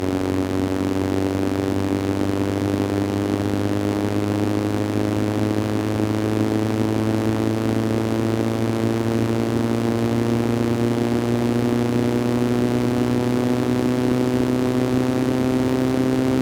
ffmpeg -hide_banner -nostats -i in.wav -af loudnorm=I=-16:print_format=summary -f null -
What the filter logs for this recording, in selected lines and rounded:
Input Integrated:    -21.0 LUFS
Input True Peak:     -10.1 dBTP
Input LRA:             1.9 LU
Input Threshold:     -31.0 LUFS